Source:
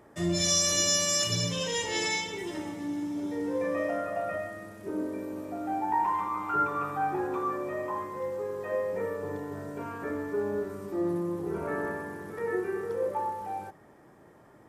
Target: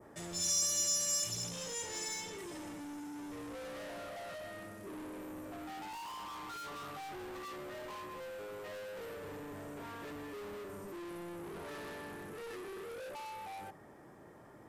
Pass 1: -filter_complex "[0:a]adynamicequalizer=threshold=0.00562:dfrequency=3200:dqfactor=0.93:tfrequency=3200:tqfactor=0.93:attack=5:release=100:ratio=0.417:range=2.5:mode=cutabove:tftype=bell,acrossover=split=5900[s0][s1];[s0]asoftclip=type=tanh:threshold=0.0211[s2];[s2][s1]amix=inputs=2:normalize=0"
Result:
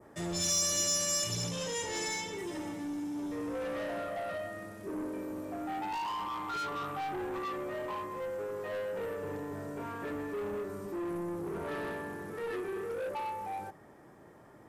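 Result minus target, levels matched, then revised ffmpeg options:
saturation: distortion -5 dB
-filter_complex "[0:a]adynamicequalizer=threshold=0.00562:dfrequency=3200:dqfactor=0.93:tfrequency=3200:tqfactor=0.93:attack=5:release=100:ratio=0.417:range=2.5:mode=cutabove:tftype=bell,acrossover=split=5900[s0][s1];[s0]asoftclip=type=tanh:threshold=0.00631[s2];[s2][s1]amix=inputs=2:normalize=0"

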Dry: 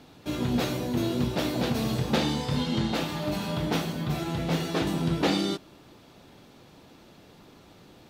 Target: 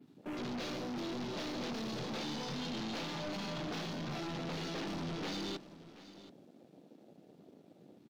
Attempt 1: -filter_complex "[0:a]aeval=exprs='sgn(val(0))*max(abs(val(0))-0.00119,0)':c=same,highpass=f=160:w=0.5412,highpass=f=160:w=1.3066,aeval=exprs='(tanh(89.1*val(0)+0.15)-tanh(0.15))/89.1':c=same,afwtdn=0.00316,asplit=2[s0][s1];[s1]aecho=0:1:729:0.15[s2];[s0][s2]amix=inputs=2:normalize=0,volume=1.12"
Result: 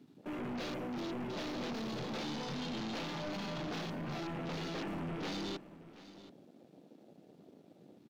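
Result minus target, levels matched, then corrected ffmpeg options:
8 kHz band -3.0 dB
-filter_complex "[0:a]aeval=exprs='sgn(val(0))*max(abs(val(0))-0.00119,0)':c=same,highpass=f=160:w=0.5412,highpass=f=160:w=1.3066,adynamicequalizer=threshold=0.00316:dfrequency=6900:dqfactor=0.93:tfrequency=6900:tqfactor=0.93:attack=5:release=100:ratio=0.4:range=3:mode=boostabove:tftype=bell,aeval=exprs='(tanh(89.1*val(0)+0.15)-tanh(0.15))/89.1':c=same,afwtdn=0.00316,asplit=2[s0][s1];[s1]aecho=0:1:729:0.15[s2];[s0][s2]amix=inputs=2:normalize=0,volume=1.12"

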